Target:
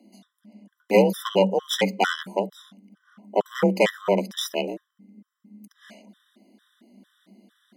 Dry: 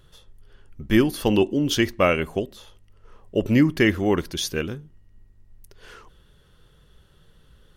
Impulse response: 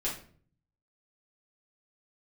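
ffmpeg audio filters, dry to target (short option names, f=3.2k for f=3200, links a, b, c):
-af "aeval=exprs='0.562*(cos(1*acos(clip(val(0)/0.562,-1,1)))-cos(1*PI/2))+0.0891*(cos(6*acos(clip(val(0)/0.562,-1,1)))-cos(6*PI/2))':c=same,afreqshift=190,afftfilt=real='re*gt(sin(2*PI*2.2*pts/sr)*(1-2*mod(floor(b*sr/1024/1000),2)),0)':imag='im*gt(sin(2*PI*2.2*pts/sr)*(1-2*mod(floor(b*sr/1024/1000),2)),0)':win_size=1024:overlap=0.75"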